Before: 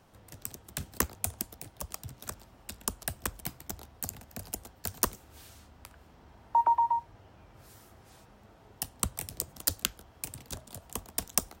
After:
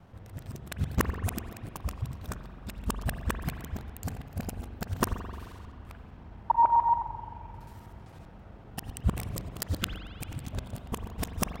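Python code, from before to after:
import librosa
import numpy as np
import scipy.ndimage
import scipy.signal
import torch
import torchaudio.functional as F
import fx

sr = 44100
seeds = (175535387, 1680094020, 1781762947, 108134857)

y = fx.local_reverse(x, sr, ms=65.0)
y = fx.bass_treble(y, sr, bass_db=8, treble_db=-11)
y = fx.rev_spring(y, sr, rt60_s=2.2, pass_ms=(43,), chirp_ms=50, drr_db=7.5)
y = F.gain(torch.from_numpy(y), 3.0).numpy()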